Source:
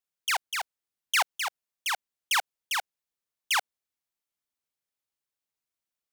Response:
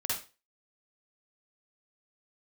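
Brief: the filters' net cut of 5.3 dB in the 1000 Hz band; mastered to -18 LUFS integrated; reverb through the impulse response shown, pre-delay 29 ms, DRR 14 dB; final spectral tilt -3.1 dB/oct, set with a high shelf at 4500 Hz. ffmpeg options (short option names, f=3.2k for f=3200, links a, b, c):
-filter_complex "[0:a]equalizer=f=1k:t=o:g=-6.5,highshelf=f=4.5k:g=-5.5,asplit=2[a][b];[1:a]atrim=start_sample=2205,adelay=29[c];[b][c]afir=irnorm=-1:irlink=0,volume=-19.5dB[d];[a][d]amix=inputs=2:normalize=0,volume=14.5dB"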